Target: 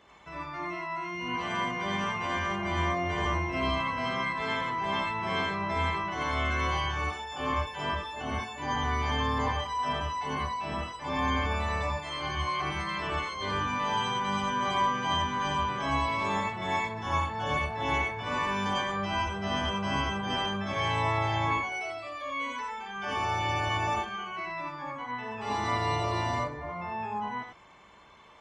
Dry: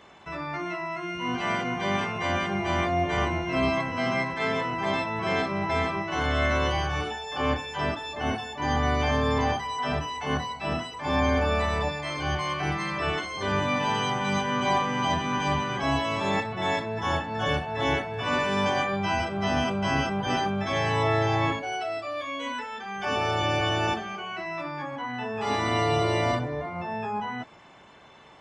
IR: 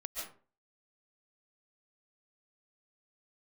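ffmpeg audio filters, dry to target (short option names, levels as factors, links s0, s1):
-filter_complex "[1:a]atrim=start_sample=2205,afade=t=out:st=0.22:d=0.01,atrim=end_sample=10143,asetrate=74970,aresample=44100[s0];[0:a][s0]afir=irnorm=-1:irlink=0,volume=1.26"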